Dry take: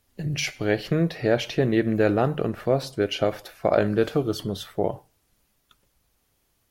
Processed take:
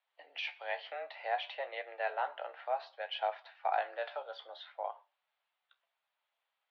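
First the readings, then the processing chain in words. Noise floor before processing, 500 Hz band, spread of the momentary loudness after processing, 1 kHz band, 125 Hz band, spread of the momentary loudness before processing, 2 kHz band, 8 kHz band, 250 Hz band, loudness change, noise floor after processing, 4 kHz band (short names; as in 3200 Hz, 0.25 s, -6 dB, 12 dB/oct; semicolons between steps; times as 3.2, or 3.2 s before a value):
-70 dBFS, -16.5 dB, 9 LU, -3.5 dB, under -40 dB, 7 LU, -8.5 dB, under -35 dB, under -40 dB, -14.0 dB, under -85 dBFS, -10.5 dB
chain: flange 0.61 Hz, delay 9.5 ms, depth 6.2 ms, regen +56%; mistuned SSB +130 Hz 540–3600 Hz; gain -5 dB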